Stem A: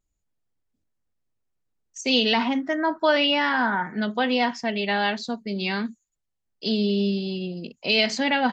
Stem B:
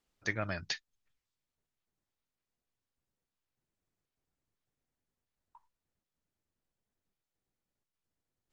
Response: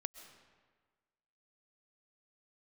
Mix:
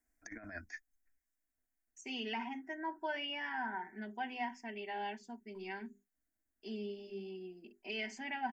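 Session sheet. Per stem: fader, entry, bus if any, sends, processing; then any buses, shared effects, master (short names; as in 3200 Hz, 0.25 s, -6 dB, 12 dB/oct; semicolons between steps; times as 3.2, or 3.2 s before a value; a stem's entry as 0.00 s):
-15.5 dB, 0.00 s, no send, notches 50/100/150/200/250/300/350/400 Hz; expander -40 dBFS; comb 5.2 ms, depth 57%
0.0 dB, 0.00 s, no send, negative-ratio compressor -39 dBFS, ratio -0.5; fixed phaser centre 590 Hz, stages 8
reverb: off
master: fixed phaser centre 810 Hz, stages 8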